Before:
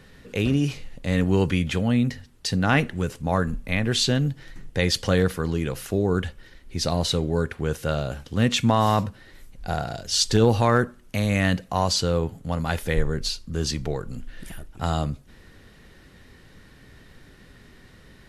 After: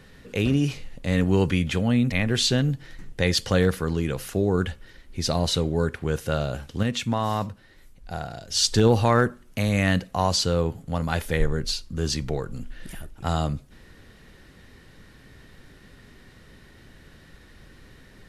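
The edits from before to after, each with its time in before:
2.12–3.69 cut
8.4–10.07 gain -5.5 dB

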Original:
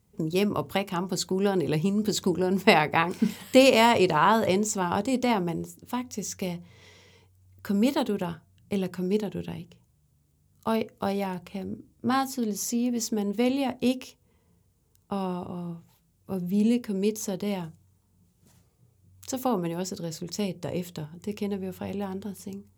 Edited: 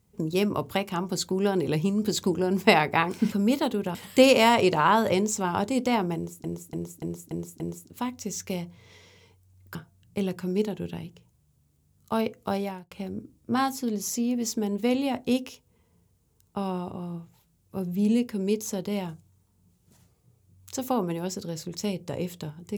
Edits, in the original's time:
5.52–5.81 loop, 6 plays
7.67–8.3 move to 3.32
11.13–11.46 fade out

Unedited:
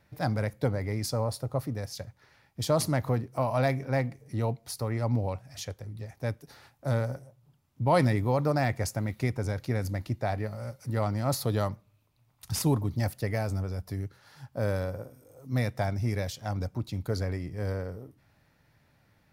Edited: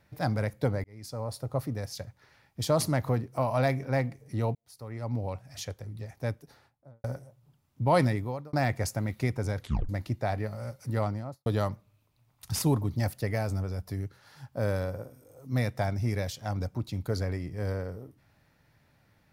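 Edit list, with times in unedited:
0.84–1.58 fade in
4.55–5.54 fade in
6.21–7.04 studio fade out
7.99–8.53 fade out
9.6 tape stop 0.29 s
10.96–11.46 studio fade out

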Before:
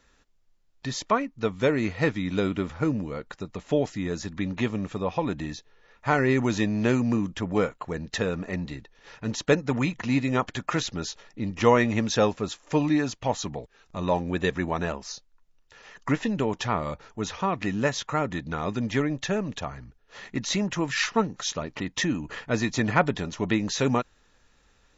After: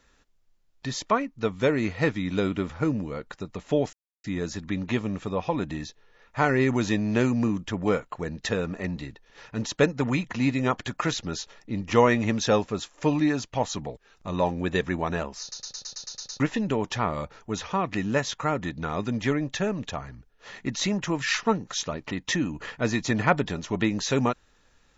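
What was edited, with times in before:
3.93 insert silence 0.31 s
15.1 stutter in place 0.11 s, 9 plays

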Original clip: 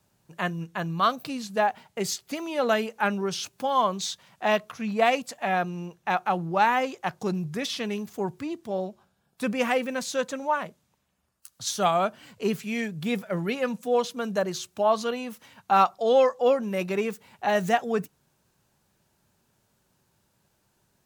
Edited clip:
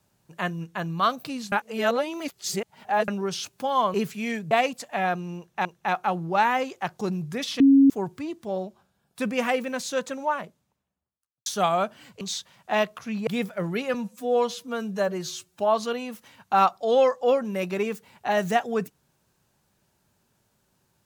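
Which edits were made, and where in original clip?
1.52–3.08 reverse
3.94–5 swap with 12.43–13
5.87–6.14 loop, 2 plays
7.82–8.12 bleep 274 Hz -11.5 dBFS
10.41–11.68 studio fade out
13.67–14.77 stretch 1.5×

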